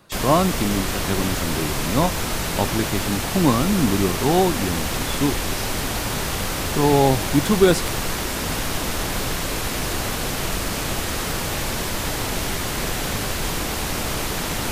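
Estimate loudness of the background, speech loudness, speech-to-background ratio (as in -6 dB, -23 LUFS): -24.5 LUFS, -22.0 LUFS, 2.5 dB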